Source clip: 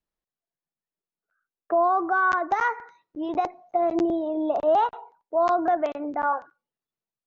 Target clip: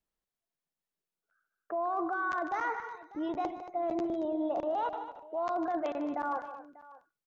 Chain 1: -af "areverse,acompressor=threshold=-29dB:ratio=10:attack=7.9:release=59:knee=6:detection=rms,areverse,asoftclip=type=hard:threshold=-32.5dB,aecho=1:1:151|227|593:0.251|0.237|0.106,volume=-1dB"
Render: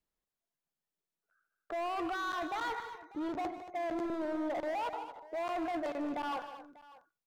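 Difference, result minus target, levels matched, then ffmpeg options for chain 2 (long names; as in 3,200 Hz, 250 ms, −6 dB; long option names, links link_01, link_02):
hard clipping: distortion +30 dB
-af "areverse,acompressor=threshold=-29dB:ratio=10:attack=7.9:release=59:knee=6:detection=rms,areverse,asoftclip=type=hard:threshold=-24dB,aecho=1:1:151|227|593:0.251|0.237|0.106,volume=-1dB"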